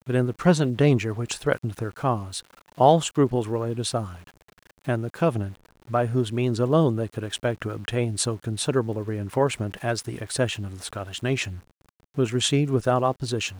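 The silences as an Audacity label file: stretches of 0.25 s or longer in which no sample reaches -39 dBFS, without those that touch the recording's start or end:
2.400000	2.780000	silence
4.280000	4.870000	silence
5.550000	5.880000	silence
11.600000	12.170000	silence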